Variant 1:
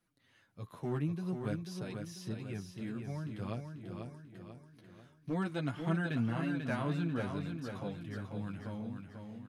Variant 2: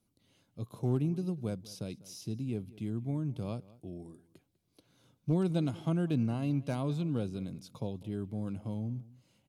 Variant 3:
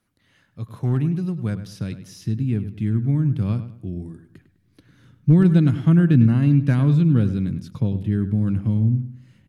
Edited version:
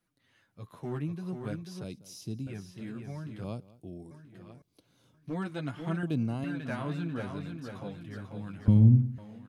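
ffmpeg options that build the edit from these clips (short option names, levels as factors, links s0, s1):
-filter_complex "[1:a]asplit=4[s0][s1][s2][s3];[0:a]asplit=6[s4][s5][s6][s7][s8][s9];[s4]atrim=end=1.842[s10];[s0]atrim=start=1.838:end=2.472[s11];[s5]atrim=start=2.468:end=3.442[s12];[s1]atrim=start=3.438:end=4.112[s13];[s6]atrim=start=4.108:end=4.622[s14];[s2]atrim=start=4.618:end=5.142[s15];[s7]atrim=start=5.138:end=6.032[s16];[s3]atrim=start=6.028:end=6.442[s17];[s8]atrim=start=6.438:end=8.682[s18];[2:a]atrim=start=8.678:end=9.182[s19];[s9]atrim=start=9.178[s20];[s10][s11]acrossfade=d=0.004:c1=hsin:c2=hsin[s21];[s21][s12]acrossfade=d=0.004:c1=hsin:c2=hsin[s22];[s22][s13]acrossfade=d=0.004:c1=hsin:c2=hsin[s23];[s23][s14]acrossfade=d=0.004:c1=hsin:c2=hsin[s24];[s24][s15]acrossfade=d=0.004:c1=hsin:c2=hsin[s25];[s25][s16]acrossfade=d=0.004:c1=hsin:c2=hsin[s26];[s26][s17]acrossfade=d=0.004:c1=hsin:c2=hsin[s27];[s27][s18]acrossfade=d=0.004:c1=hsin:c2=hsin[s28];[s28][s19]acrossfade=d=0.004:c1=hsin:c2=hsin[s29];[s29][s20]acrossfade=d=0.004:c1=hsin:c2=hsin"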